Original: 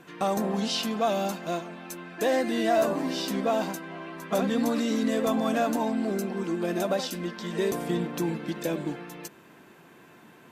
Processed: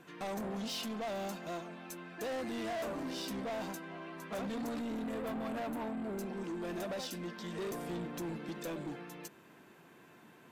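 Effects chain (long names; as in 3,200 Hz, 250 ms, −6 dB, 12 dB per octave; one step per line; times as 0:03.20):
0:04.79–0:06.18: parametric band 5,400 Hz −14.5 dB 0.93 octaves
soft clipping −29.5 dBFS, distortion −8 dB
level −6 dB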